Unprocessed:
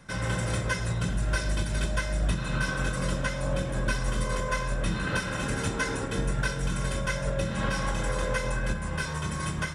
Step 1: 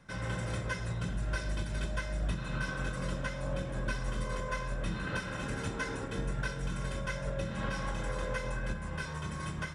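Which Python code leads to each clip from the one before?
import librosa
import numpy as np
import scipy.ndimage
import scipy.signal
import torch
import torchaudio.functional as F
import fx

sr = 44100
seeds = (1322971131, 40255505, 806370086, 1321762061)

y = fx.high_shelf(x, sr, hz=7100.0, db=-8.5)
y = y * 10.0 ** (-6.5 / 20.0)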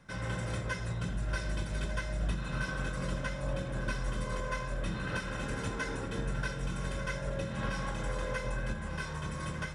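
y = x + 10.0 ** (-11.5 / 20.0) * np.pad(x, (int(1194 * sr / 1000.0), 0))[:len(x)]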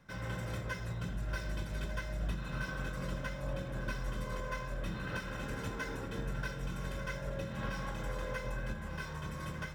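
y = np.interp(np.arange(len(x)), np.arange(len(x))[::2], x[::2])
y = y * 10.0 ** (-3.5 / 20.0)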